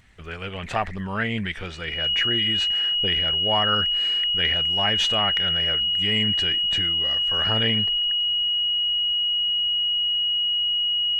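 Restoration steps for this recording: de-click; notch 2900 Hz, Q 30

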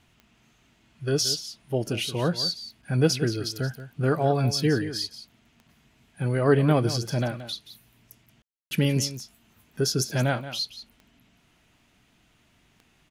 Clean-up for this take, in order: de-click; room tone fill 8.42–8.71; inverse comb 0.177 s -13 dB

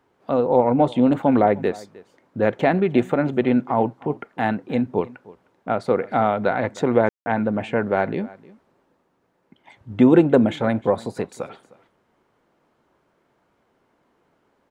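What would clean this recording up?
room tone fill 7.09–7.26; inverse comb 0.308 s -21.5 dB

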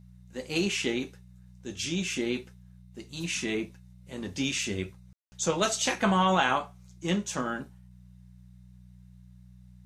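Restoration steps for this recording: de-hum 61.1 Hz, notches 3; room tone fill 5.13–5.32

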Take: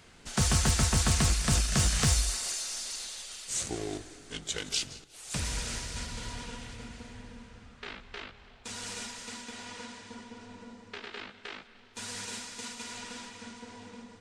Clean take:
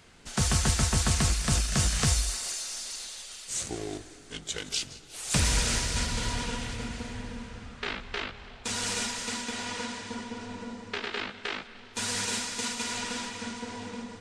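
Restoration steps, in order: clip repair -17.5 dBFS; gain correction +8.5 dB, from 5.04

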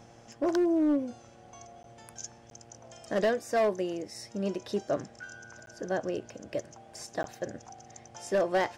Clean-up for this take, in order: clip repair -21 dBFS; de-hum 116.2 Hz, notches 7; interpolate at 1.83/2.5/5.66/7.23, 12 ms

